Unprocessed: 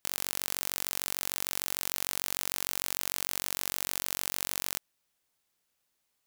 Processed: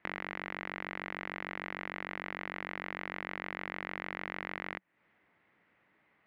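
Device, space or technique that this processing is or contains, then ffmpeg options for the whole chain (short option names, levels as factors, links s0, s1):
bass amplifier: -af "acompressor=threshold=0.01:ratio=5,highpass=77,equalizer=f=190:t=q:w=4:g=6,equalizer=f=310:t=q:w=4:g=5,equalizer=f=2000:t=q:w=4:g=8,lowpass=f=2200:w=0.5412,lowpass=f=2200:w=1.3066,volume=5.31"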